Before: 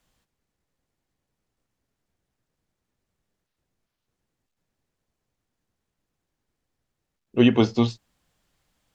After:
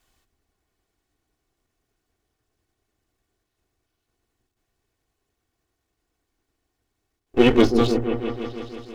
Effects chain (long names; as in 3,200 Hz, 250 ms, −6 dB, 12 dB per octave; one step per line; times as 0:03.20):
lower of the sound and its delayed copy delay 2.7 ms
echo whose low-pass opens from repeat to repeat 163 ms, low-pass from 400 Hz, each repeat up 1 octave, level −6 dB
level +5 dB